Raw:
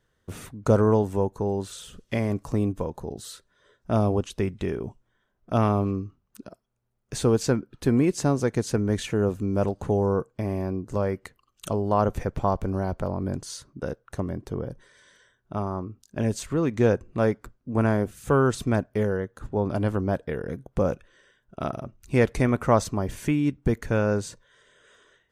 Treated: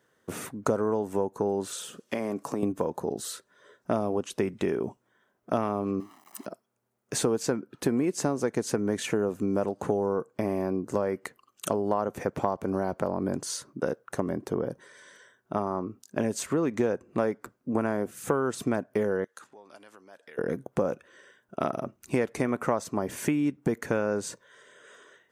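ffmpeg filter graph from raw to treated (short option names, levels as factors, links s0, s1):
-filter_complex "[0:a]asettb=1/sr,asplit=3[s0][s1][s2];[s0]atrim=end=1.734[s3];[s1]atrim=start=1.73:end=2.63,asetpts=PTS-STARTPTS,afade=t=in:d=0.004:c=qsin,afade=t=out:st=0.896:d=0.004:c=qsin,highpass=170,bandreject=f=2000:w=19,acompressor=threshold=0.0355:ratio=5:attack=3.2:release=140:knee=1:detection=peak[s4];[s2]atrim=start=2.626[s5];[s3][s4]acrossfade=d=0.004:c1=hsin:c2=qsin[s6];[s6][s5]acrossfade=d=0.004:c1=qsin:c2=hsin,asettb=1/sr,asplit=3[s7][s8][s9];[s7]atrim=end=6.004[s10];[s8]atrim=start=6:end=6.46,asetpts=PTS-STARTPTS,afade=t=in:d=0.004:c=qsin,afade=t=out:st=0.456:d=0.004:c=qsin,aeval=exprs='val(0)+0.5*0.00299*sgn(val(0))':c=same,highpass=420,aecho=1:1:1:0.85,atrim=end_sample=20286[s11];[s9]atrim=start=6.456[s12];[s10][s11]acrossfade=d=0.004:c1=hsin:c2=qsin[s13];[s13][s12]acrossfade=d=0.004:c1=qsin:c2=hsin,asettb=1/sr,asplit=3[s14][s15][s16];[s14]atrim=end=19.244[s17];[s15]atrim=start=19.24:end=20.38,asetpts=PTS-STARTPTS,afade=t=in:d=0.004:c=qsin,afade=t=out:st=1.136:d=0.004:c=qsin,highshelf=f=4100:g=6,acompressor=threshold=0.0178:ratio=20:attack=3.2:release=140:knee=1:detection=peak,bandpass=f=4100:t=q:w=0.58[s18];[s16]atrim=start=20.376[s19];[s17][s18]acrossfade=d=0.004:c1=hsin:c2=qsin[s20];[s20][s19]acrossfade=d=0.004:c1=qsin:c2=hsin,highpass=220,equalizer=f=3700:t=o:w=1.2:g=-5,acompressor=threshold=0.0355:ratio=6,volume=2"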